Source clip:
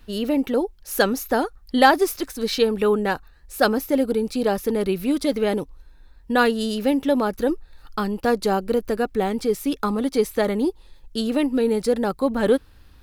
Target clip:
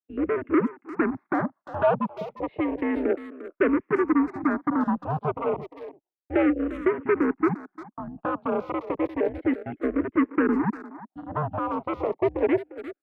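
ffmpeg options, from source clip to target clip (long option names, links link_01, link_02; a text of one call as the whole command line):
ffmpeg -i in.wav -filter_complex "[0:a]aeval=exprs='0.75*(cos(1*acos(clip(val(0)/0.75,-1,1)))-cos(1*PI/2))+0.211*(cos(3*acos(clip(val(0)/0.75,-1,1)))-cos(3*PI/2))+0.106*(cos(4*acos(clip(val(0)/0.75,-1,1)))-cos(4*PI/2))+0.0473*(cos(5*acos(clip(val(0)/0.75,-1,1)))-cos(5*PI/2))+0.0335*(cos(6*acos(clip(val(0)/0.75,-1,1)))-cos(6*PI/2))':channel_layout=same,afwtdn=0.0708,equalizer=frequency=500:width_type=o:width=2.9:gain=14.5,acompressor=threshold=-16dB:ratio=1.5,agate=range=-33dB:threshold=-36dB:ratio=3:detection=peak,asoftclip=type=hard:threshold=-18.5dB,highpass=frequency=430:width_type=q:width=0.5412,highpass=frequency=430:width_type=q:width=1.307,lowpass=frequency=2500:width_type=q:width=0.5176,lowpass=frequency=2500:width_type=q:width=0.7071,lowpass=frequency=2500:width_type=q:width=1.932,afreqshift=-160,asplit=2[link_01][link_02];[link_02]adelay=350,highpass=300,lowpass=3400,asoftclip=type=hard:threshold=-21dB,volume=-13dB[link_03];[link_01][link_03]amix=inputs=2:normalize=0,asplit=2[link_04][link_05];[link_05]afreqshift=-0.31[link_06];[link_04][link_06]amix=inputs=2:normalize=1,volume=4.5dB" out.wav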